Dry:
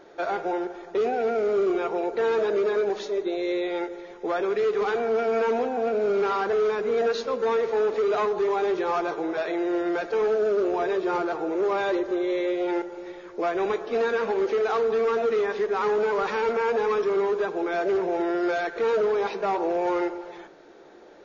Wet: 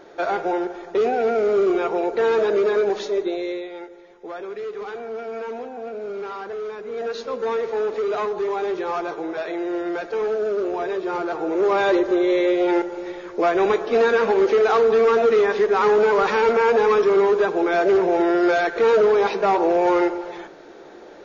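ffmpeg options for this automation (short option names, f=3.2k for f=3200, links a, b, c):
-af "volume=18.5dB,afade=t=out:st=3.19:d=0.5:silence=0.266073,afade=t=in:st=6.88:d=0.48:silence=0.446684,afade=t=in:st=11.15:d=0.75:silence=0.446684"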